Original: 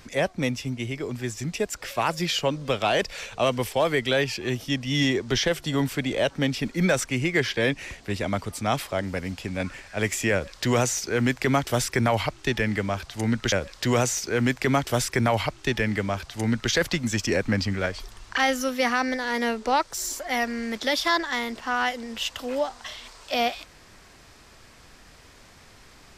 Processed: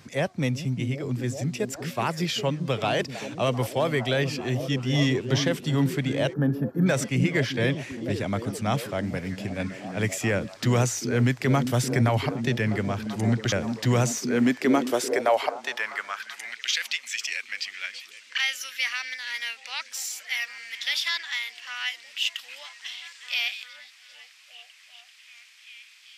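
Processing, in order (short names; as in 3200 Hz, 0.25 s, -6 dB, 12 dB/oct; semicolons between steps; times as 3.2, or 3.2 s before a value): on a send: delay with a stepping band-pass 0.39 s, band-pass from 210 Hz, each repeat 0.7 oct, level -4 dB; on the sum: spectral gain 6.33–6.87, 1800–11000 Hz -22 dB; high-pass sweep 120 Hz -> 2500 Hz, 13.97–16.63; gain -3 dB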